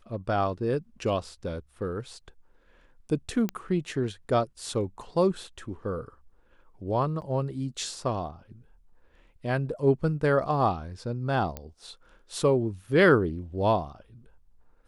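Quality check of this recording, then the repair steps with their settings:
3.49 pop -16 dBFS
7.21–7.22 gap 9.4 ms
11.57 pop -19 dBFS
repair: de-click; interpolate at 7.21, 9.4 ms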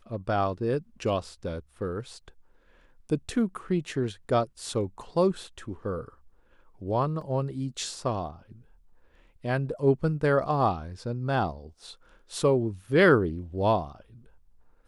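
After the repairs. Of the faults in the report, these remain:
none

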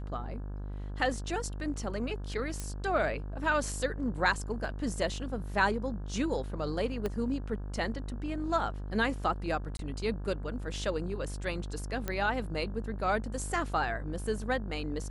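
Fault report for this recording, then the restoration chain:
buzz 50 Hz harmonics 34 -38 dBFS
2.6 pop -21 dBFS
7.06 pop -20 dBFS
9.77–9.79 gap 22 ms
12.08 pop -18 dBFS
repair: de-click; de-hum 50 Hz, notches 34; interpolate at 9.77, 22 ms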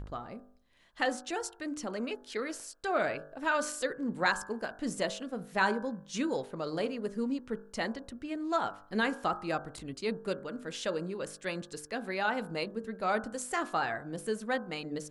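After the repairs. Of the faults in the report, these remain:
2.6 pop
7.06 pop

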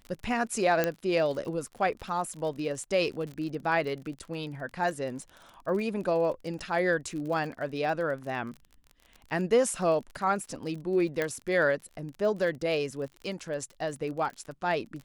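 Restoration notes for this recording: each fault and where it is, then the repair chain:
crackle 37/s -37 dBFS
0.84 pop -11 dBFS
11.22 pop -15 dBFS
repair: de-click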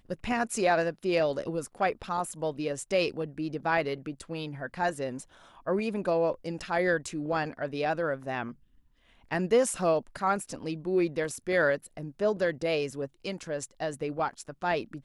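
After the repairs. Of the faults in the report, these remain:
none

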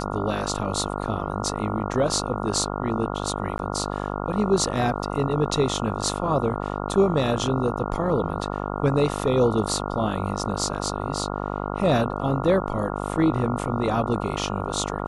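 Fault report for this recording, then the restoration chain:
buzz 50 Hz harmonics 28 -29 dBFS
3.58–3.59 gap 11 ms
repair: de-hum 50 Hz, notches 28; interpolate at 3.58, 11 ms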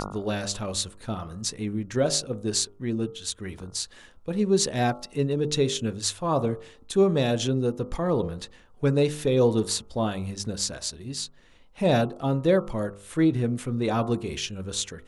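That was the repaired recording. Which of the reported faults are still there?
none

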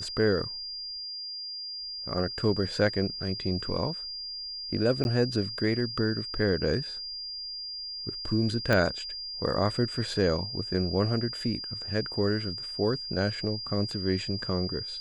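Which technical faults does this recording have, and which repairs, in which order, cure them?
tone 4800 Hz -35 dBFS
5.04–5.05 gap 11 ms
8.73 pop -11 dBFS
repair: de-click; notch 4800 Hz, Q 30; interpolate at 5.04, 11 ms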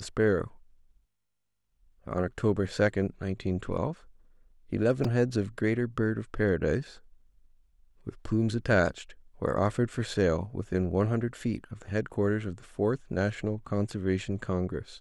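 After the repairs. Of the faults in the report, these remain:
8.73 pop

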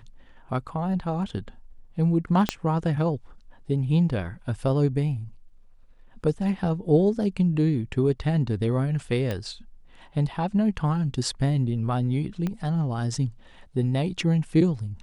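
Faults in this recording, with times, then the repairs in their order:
2.49 pop -8 dBFS
9.31 pop -16 dBFS
12.47 pop -17 dBFS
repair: de-click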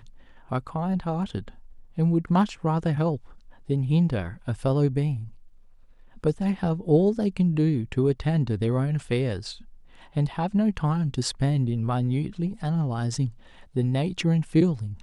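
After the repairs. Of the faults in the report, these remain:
2.49 pop
12.47 pop

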